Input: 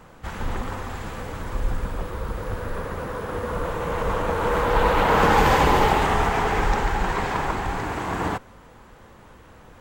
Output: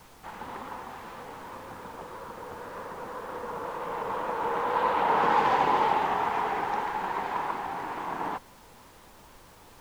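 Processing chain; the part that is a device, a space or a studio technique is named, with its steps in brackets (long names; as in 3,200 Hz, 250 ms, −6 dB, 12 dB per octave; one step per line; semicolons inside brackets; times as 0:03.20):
horn gramophone (band-pass filter 220–4,400 Hz; parametric band 920 Hz +7.5 dB 0.53 octaves; tape wow and flutter; pink noise bed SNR 24 dB)
level −9 dB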